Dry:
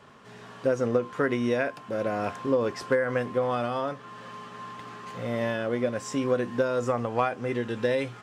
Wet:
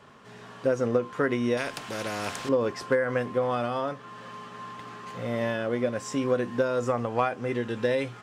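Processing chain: 1.57–2.49 spectral compressor 2:1

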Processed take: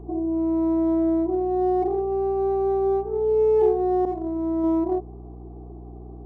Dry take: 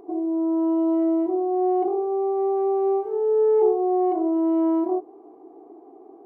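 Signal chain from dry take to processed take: Wiener smoothing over 15 samples; 4.05–4.64 expander -17 dBFS; hum 60 Hz, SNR 17 dB

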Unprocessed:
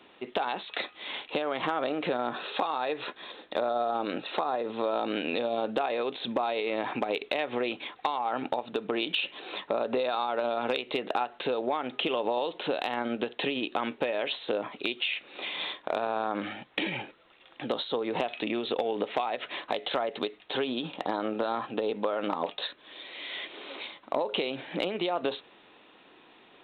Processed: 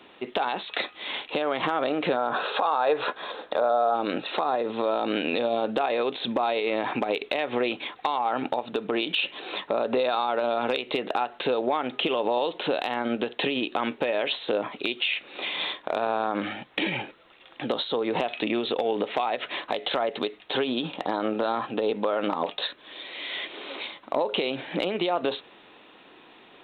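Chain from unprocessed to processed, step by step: spectral gain 2.17–3.95, 430–1700 Hz +7 dB; limiter -18.5 dBFS, peak gain reduction 9 dB; gain +4.5 dB

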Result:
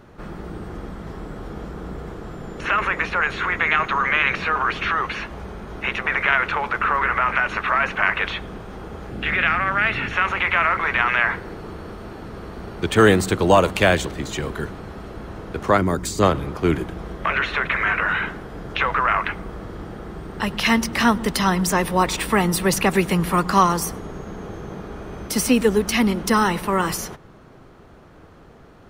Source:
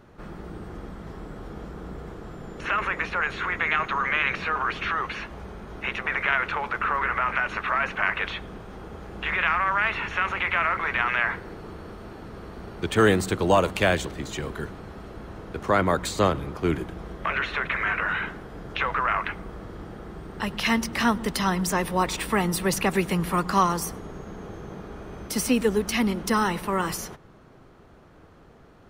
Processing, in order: 9.11–10.13 thirty-one-band EQ 125 Hz +11 dB, 250 Hz +10 dB, 1000 Hz -11 dB, 6300 Hz -4 dB; 15.77–16.23 spectral gain 450–4500 Hz -8 dB; gain +5 dB

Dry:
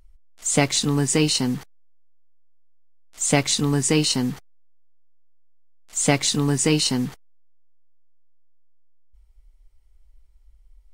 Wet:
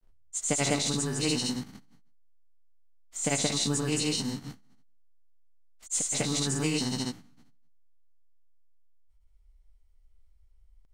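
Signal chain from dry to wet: spectral trails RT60 0.57 s; notches 50/100/150 Hz; grains, grains 28/s, spray 0.134 s, pitch spread up and down by 0 st; gain -6.5 dB

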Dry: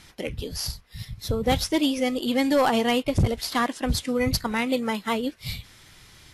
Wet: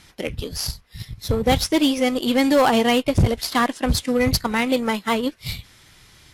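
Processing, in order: added harmonics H 7 -22 dB, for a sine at -14.5 dBFS; in parallel at -5 dB: overloaded stage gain 32.5 dB; on the sum: gain +3.5 dB

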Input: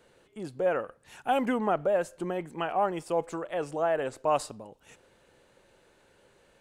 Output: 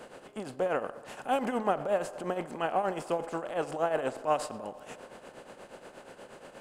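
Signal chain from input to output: per-bin compression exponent 0.6; tremolo triangle 8.4 Hz, depth 75%; band-limited delay 72 ms, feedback 81%, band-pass 730 Hz, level -19 dB; gain -1.5 dB

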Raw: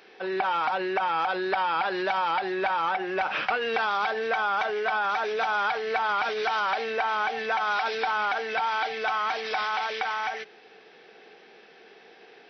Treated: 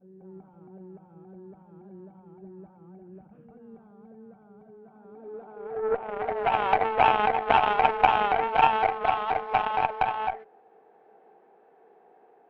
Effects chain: reverse echo 0.193 s -5 dB; low-pass sweep 190 Hz -> 850 Hz, 4.79–6.66; added harmonics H 2 -25 dB, 3 -11 dB, 6 -39 dB, 8 -42 dB, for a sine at -10.5 dBFS; gain +7.5 dB

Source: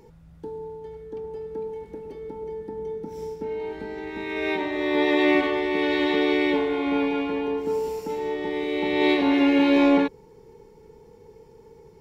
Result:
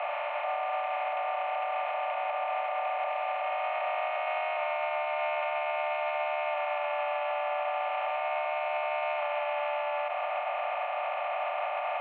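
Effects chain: per-bin compression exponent 0.2; limiter -16.5 dBFS, peak gain reduction 11 dB; mistuned SSB +310 Hz 280–2400 Hz; gain -5.5 dB

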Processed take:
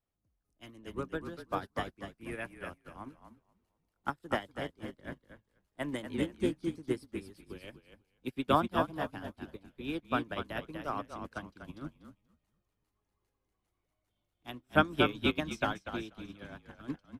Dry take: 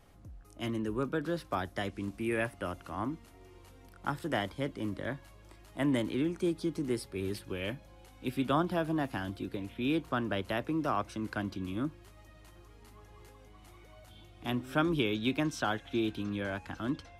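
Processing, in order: frequency-shifting echo 0.242 s, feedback 40%, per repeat -38 Hz, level -4 dB; harmonic-percussive split harmonic -7 dB; upward expander 2.5:1, over -48 dBFS; gain +7 dB

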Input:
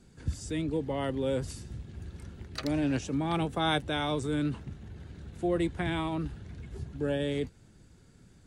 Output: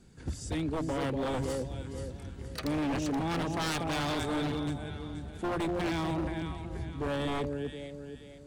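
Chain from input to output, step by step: echo with dull and thin repeats by turns 0.239 s, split 840 Hz, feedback 61%, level -4 dB; wavefolder -26 dBFS

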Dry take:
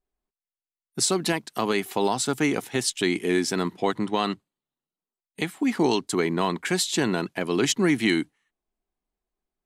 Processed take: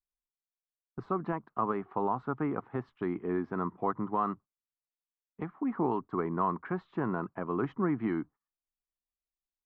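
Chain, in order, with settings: gate -42 dBFS, range -14 dB; ladder low-pass 1300 Hz, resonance 65%; low shelf 150 Hz +11 dB

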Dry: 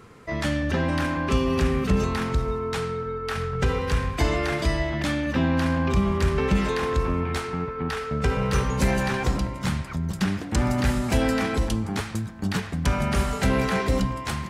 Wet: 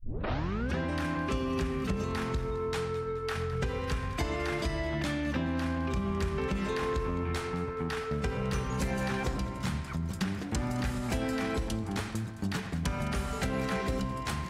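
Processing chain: tape start at the beginning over 0.77 s; compressor, threshold -24 dBFS, peak gain reduction 8 dB; echo with dull and thin repeats by turns 0.106 s, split 960 Hz, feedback 62%, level -11 dB; gain -4 dB

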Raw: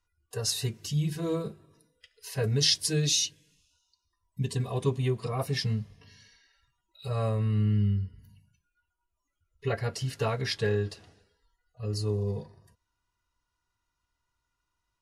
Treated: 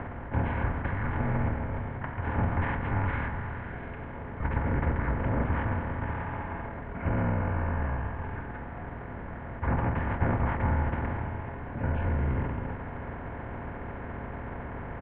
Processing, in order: per-bin compression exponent 0.2; mistuned SSB -290 Hz 320–2800 Hz; pitch shift -8 st; gain -1.5 dB

